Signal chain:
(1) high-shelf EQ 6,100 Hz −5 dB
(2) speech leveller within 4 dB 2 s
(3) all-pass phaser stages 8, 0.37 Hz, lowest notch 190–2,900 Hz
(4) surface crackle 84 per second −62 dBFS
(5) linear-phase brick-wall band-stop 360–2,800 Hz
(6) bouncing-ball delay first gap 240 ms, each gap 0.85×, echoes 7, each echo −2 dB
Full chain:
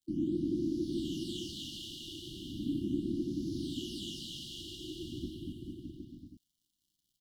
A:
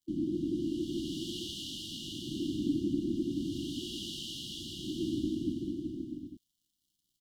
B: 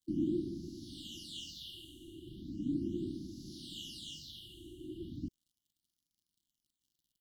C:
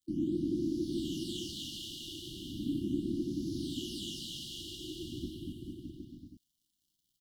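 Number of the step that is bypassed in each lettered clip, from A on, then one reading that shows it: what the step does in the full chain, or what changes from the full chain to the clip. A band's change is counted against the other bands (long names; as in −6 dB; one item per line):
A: 3, 125 Hz band −2.0 dB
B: 6, change in integrated loudness −4.0 LU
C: 1, 8 kHz band +3.0 dB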